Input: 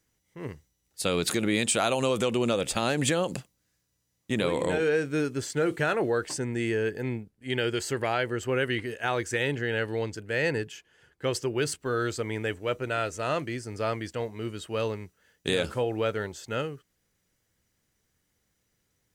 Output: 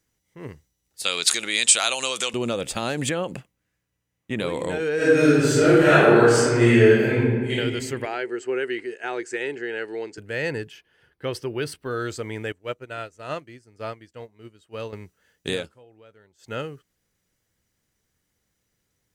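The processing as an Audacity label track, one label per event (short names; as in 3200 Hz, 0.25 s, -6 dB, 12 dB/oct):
1.040000	2.340000	weighting filter ITU-R 468
3.090000	4.400000	resonant high shelf 3400 Hz -7 dB, Q 1.5
4.950000	7.510000	reverb throw, RT60 1.6 s, DRR -12 dB
8.050000	10.180000	speaker cabinet 360–8400 Hz, peaks and dips at 380 Hz +9 dB, 560 Hz -6 dB, 1100 Hz -7 dB, 3400 Hz -8 dB, 5900 Hz -5 dB
10.700000	11.910000	bell 7100 Hz -13.5 dB 0.42 oct
12.520000	14.930000	upward expander 2.5:1, over -37 dBFS
15.550000	16.520000	dip -23.5 dB, fades 0.14 s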